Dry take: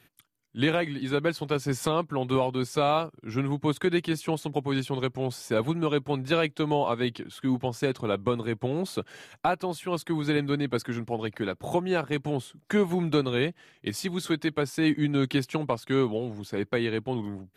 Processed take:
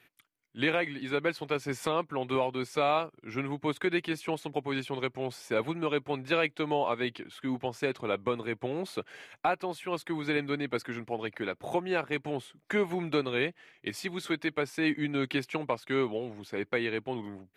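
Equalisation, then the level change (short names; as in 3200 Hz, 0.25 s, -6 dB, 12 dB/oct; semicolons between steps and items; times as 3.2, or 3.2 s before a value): tone controls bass -8 dB, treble -5 dB; bell 2200 Hz +6 dB 0.51 oct; -2.5 dB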